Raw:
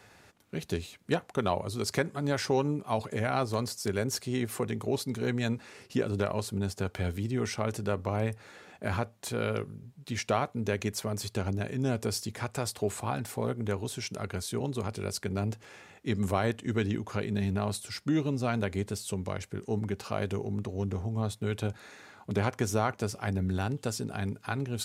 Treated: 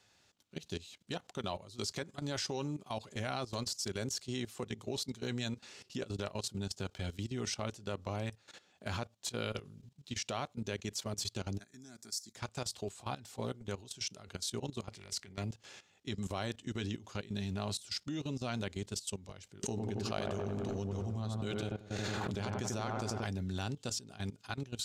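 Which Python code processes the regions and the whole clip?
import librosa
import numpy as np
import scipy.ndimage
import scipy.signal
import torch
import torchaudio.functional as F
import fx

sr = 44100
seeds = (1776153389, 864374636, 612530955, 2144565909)

y = fx.chain(x, sr, fx.highpass(hz=350.0, slope=12),
    fx.peak_eq(hz=990.0, db=-14.5, octaves=1.1),
    fx.fixed_phaser(hz=1200.0, stages=4), at=(11.59, 12.36))
y = fx.chain(y, sr, fx.peak_eq(hz=2000.0, db=12.5, octaves=0.47),
    fx.transient(attack_db=-10, sustain_db=3), at=(14.91, 15.44))
y = fx.chain(y, sr, fx.transient(attack_db=5, sustain_db=-10),
    fx.echo_wet_lowpass(ms=91, feedback_pct=66, hz=1700.0, wet_db=-5.0),
    fx.pre_swell(db_per_s=24.0), at=(19.63, 23.24))
y = fx.band_shelf(y, sr, hz=4700.0, db=9.5, octaves=1.7)
y = fx.notch(y, sr, hz=450.0, q=13.0)
y = fx.level_steps(y, sr, step_db=16)
y = y * 10.0 ** (-5.0 / 20.0)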